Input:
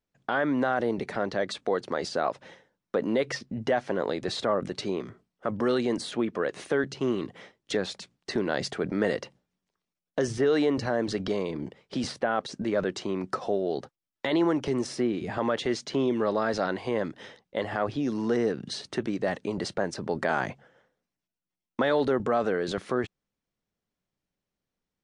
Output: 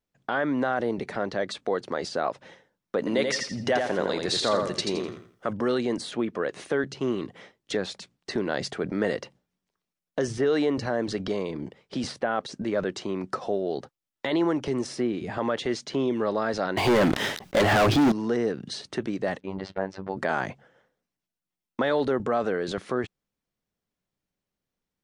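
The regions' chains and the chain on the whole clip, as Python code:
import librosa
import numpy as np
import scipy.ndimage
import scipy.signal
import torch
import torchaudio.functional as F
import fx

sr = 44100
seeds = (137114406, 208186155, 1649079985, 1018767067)

y = fx.chain(x, sr, fx.high_shelf(hz=2700.0, db=9.5),
    fx.echo_feedback(ms=84, feedback_pct=31, wet_db=-4.5), at=(2.98, 5.53))
y = fx.chain(y, sr, fx.notch(hz=490.0, q=6.4),
    fx.leveller(passes=5),
    fx.sustainer(db_per_s=110.0), at=(16.77, 18.12))
y = fx.chain(y, sr, fx.lowpass(hz=3100.0, slope=12),
    fx.peak_eq(hz=890.0, db=3.5, octaves=0.66),
    fx.robotise(hz=95.8), at=(19.4, 20.17))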